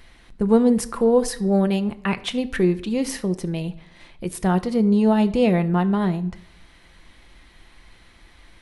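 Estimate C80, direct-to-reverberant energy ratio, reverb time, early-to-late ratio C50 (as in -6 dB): 20.0 dB, 9.5 dB, 0.75 s, 17.0 dB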